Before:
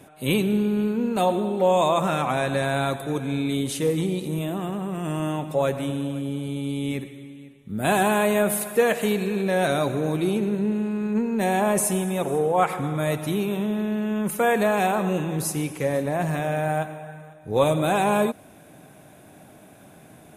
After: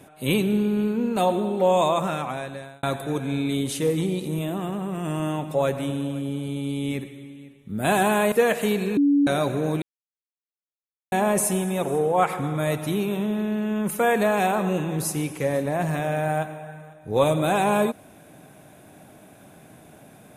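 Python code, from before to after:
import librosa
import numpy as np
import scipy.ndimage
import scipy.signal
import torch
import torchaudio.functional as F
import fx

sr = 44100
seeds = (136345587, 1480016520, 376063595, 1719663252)

y = fx.edit(x, sr, fx.fade_out_span(start_s=1.81, length_s=1.02),
    fx.cut(start_s=8.32, length_s=0.4),
    fx.bleep(start_s=9.37, length_s=0.3, hz=285.0, db=-15.0),
    fx.silence(start_s=10.22, length_s=1.3), tone=tone)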